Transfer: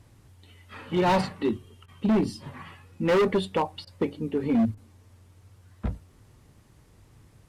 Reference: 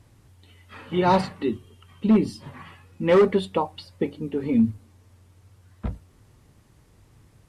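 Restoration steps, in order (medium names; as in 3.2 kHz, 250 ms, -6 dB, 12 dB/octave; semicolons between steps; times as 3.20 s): clip repair -18.5 dBFS; interpolate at 1.86/3.85/4.75 s, 20 ms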